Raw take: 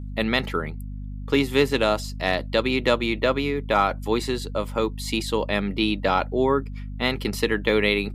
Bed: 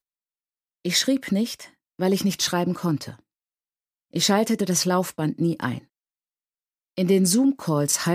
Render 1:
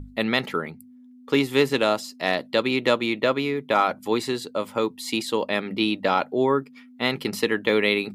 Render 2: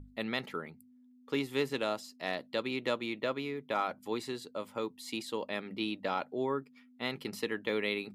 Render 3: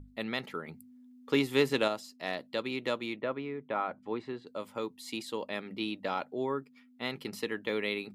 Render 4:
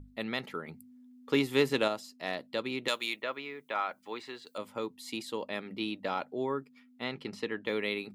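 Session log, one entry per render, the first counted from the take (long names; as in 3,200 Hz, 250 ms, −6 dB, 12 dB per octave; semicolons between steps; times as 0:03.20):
mains-hum notches 50/100/150/200 Hz
level −12 dB
0:00.68–0:01.88: clip gain +5.5 dB; 0:03.16–0:04.47: low-pass filter 2,100 Hz
0:02.88–0:04.58: spectral tilt +4.5 dB per octave; 0:07.04–0:07.66: high-frequency loss of the air 77 metres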